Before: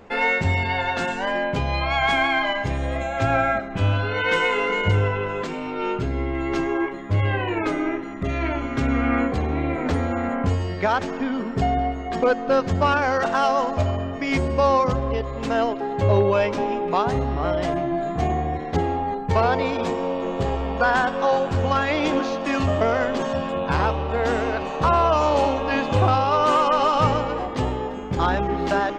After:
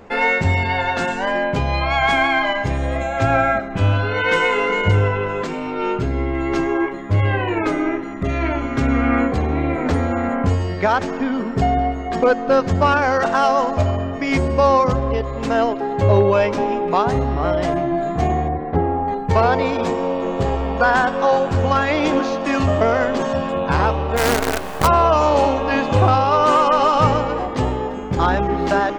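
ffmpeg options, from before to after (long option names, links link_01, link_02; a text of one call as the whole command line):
ffmpeg -i in.wav -filter_complex "[0:a]asettb=1/sr,asplit=3[link_01][link_02][link_03];[link_01]atrim=end=18.484[link_04];[link_02]atrim=start=18.48:end=19.08,asetpts=PTS-STARTPTS,afade=type=in:duration=0.004:curve=qsin,afade=type=out:start_time=0.596:duration=0.004:curve=qsin,lowpass=1500[link_05];[link_03]atrim=start=19.076[link_06];[link_04][link_05]acrossfade=duration=0.004:curve1=hsin:curve2=qsin[link_07];[link_07][link_06]acrossfade=duration=0.004:curve1=qsin:curve2=hsin,asplit=3[link_08][link_09][link_10];[link_08]afade=type=out:start_time=24.16:duration=0.02[link_11];[link_09]acrusher=bits=4:dc=4:mix=0:aa=0.000001,afade=type=in:start_time=24.16:duration=0.02,afade=type=out:start_time=24.86:duration=0.02[link_12];[link_10]afade=type=in:start_time=24.86:duration=0.02[link_13];[link_11][link_12][link_13]amix=inputs=3:normalize=0,equalizer=frequency=3200:width=1.5:gain=-2.5,volume=4dB" out.wav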